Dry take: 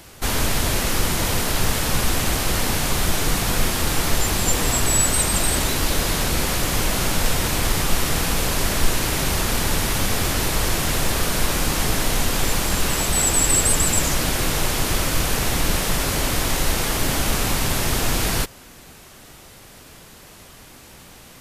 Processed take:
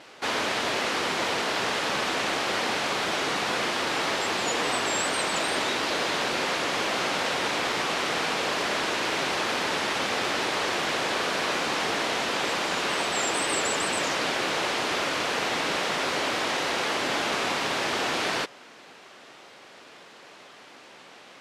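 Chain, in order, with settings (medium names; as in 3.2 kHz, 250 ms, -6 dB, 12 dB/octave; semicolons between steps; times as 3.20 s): wow and flutter 87 cents; band-pass 370–4000 Hz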